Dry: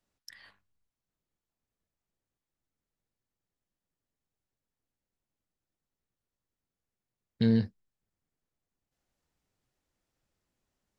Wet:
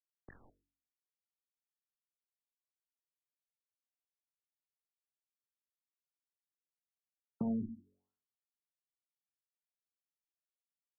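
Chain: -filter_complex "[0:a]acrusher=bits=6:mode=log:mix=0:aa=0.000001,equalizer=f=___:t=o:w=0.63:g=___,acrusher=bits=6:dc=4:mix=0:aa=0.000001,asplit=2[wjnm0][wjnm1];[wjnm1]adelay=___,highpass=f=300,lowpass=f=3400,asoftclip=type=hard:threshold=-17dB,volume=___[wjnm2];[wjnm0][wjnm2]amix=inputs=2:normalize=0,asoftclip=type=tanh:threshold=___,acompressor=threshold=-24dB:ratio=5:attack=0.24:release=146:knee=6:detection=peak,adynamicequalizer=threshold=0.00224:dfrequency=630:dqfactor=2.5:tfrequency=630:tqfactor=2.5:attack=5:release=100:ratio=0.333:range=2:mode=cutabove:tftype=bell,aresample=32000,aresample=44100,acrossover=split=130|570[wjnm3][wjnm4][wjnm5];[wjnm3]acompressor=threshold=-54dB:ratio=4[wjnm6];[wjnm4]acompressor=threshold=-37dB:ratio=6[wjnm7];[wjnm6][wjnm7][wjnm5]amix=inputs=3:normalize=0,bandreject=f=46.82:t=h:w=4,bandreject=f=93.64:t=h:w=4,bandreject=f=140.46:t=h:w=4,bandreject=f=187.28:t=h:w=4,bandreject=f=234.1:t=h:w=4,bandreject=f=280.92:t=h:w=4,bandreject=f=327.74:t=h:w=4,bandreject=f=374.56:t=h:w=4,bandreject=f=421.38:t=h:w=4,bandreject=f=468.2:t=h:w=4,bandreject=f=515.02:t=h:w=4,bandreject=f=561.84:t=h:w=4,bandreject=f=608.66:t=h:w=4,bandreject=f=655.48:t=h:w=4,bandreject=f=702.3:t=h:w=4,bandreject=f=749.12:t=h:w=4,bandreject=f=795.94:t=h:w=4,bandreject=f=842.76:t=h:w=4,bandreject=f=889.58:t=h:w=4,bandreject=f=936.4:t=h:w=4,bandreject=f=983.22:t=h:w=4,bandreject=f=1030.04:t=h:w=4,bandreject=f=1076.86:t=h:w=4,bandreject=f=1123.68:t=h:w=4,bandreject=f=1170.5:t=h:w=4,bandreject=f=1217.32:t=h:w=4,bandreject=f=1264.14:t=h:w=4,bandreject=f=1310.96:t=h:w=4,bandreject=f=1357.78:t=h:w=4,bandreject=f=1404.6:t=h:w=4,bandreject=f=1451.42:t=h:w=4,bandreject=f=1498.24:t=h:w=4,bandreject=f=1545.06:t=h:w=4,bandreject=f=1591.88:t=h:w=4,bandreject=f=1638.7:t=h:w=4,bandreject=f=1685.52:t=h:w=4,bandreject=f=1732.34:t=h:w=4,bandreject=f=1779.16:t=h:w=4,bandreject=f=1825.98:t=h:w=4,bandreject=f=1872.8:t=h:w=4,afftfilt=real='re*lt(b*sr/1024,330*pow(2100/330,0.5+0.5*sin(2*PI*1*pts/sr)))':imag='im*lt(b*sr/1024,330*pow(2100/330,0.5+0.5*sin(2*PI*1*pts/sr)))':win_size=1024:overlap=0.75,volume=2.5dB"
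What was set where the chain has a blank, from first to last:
260, 13.5, 140, -22dB, -11dB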